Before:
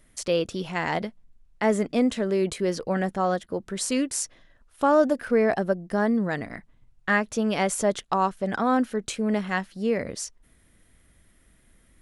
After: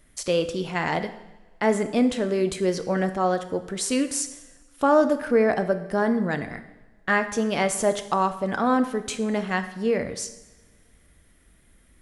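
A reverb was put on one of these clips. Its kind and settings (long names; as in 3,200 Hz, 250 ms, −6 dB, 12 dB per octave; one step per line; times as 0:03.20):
coupled-rooms reverb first 0.89 s, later 2.7 s, from −22 dB, DRR 8.5 dB
level +1 dB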